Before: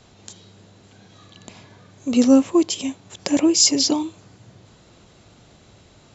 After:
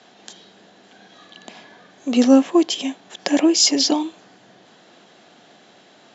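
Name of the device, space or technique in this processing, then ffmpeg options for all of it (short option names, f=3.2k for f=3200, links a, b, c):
television speaker: -af "highpass=f=200:w=0.5412,highpass=f=200:w=1.3066,equalizer=f=730:t=q:w=4:g=7,equalizer=f=1.7k:t=q:w=4:g=8,equalizer=f=3.2k:t=q:w=4:g=5,lowpass=f=6.7k:w=0.5412,lowpass=f=6.7k:w=1.3066,volume=1dB"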